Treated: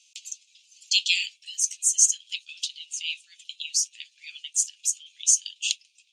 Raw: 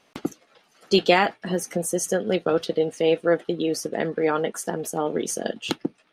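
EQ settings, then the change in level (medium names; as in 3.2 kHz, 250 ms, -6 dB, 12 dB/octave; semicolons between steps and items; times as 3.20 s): Chebyshev high-pass 2.5 kHz, order 6; resonant low-pass 7.1 kHz, resonance Q 4.4; +3.0 dB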